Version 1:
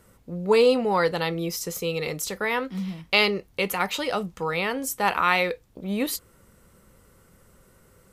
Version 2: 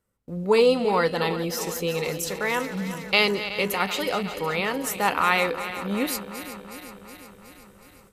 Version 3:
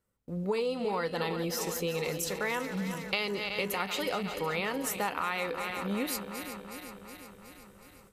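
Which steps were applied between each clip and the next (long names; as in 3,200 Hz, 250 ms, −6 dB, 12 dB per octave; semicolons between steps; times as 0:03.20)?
feedback delay that plays each chunk backwards 184 ms, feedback 79%, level −12 dB; noise gate with hold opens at −42 dBFS
downward compressor 10 to 1, threshold −24 dBFS, peak gain reduction 10.5 dB; level −3.5 dB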